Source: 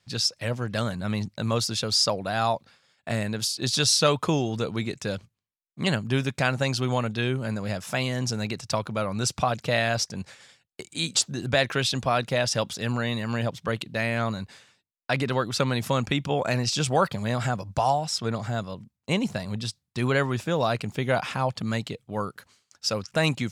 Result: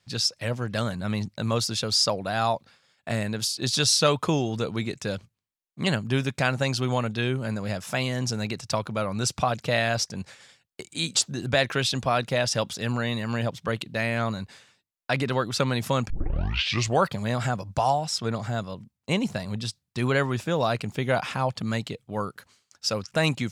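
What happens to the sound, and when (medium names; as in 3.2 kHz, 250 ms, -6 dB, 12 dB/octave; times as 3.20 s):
16.10 s: tape start 0.89 s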